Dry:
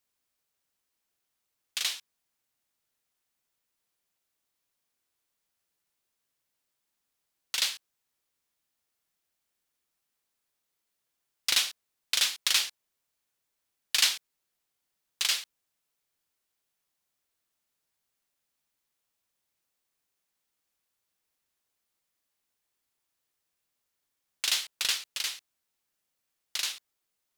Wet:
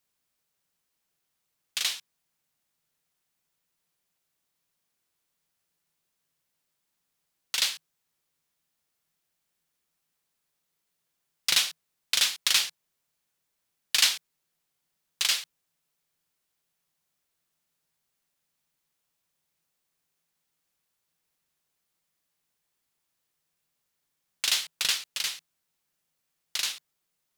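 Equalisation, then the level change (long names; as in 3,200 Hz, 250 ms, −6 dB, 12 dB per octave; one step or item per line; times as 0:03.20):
parametric band 160 Hz +11.5 dB 0.25 octaves
+2.0 dB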